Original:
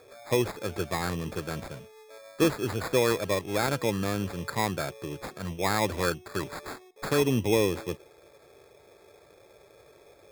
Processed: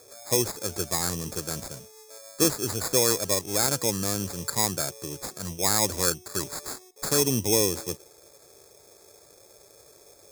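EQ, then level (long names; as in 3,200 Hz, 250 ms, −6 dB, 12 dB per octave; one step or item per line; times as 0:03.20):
high shelf with overshoot 4,200 Hz +13 dB, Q 1.5
−1.0 dB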